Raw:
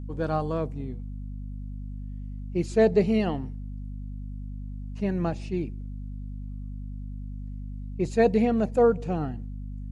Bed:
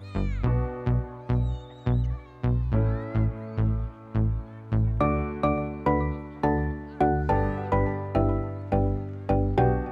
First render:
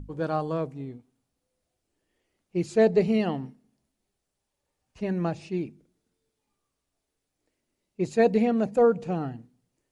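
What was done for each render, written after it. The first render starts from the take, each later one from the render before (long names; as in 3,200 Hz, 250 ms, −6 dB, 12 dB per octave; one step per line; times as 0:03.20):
mains-hum notches 50/100/150/200/250 Hz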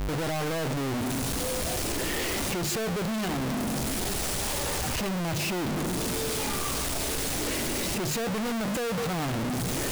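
sign of each sample alone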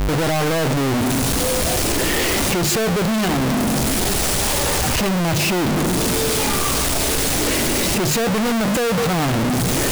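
level +10.5 dB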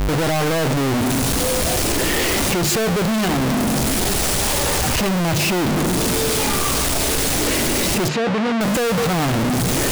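0:08.08–0:08.61: band-pass filter 130–3,600 Hz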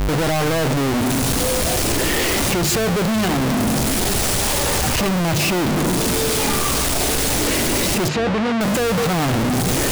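mix in bed −9 dB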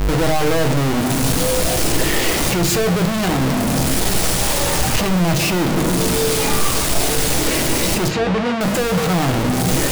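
rectangular room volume 160 cubic metres, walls furnished, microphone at 0.62 metres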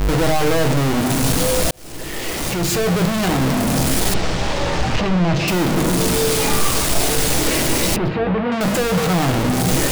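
0:01.71–0:03.00: fade in
0:04.14–0:05.48: high-frequency loss of the air 150 metres
0:07.96–0:08.52: high-frequency loss of the air 410 metres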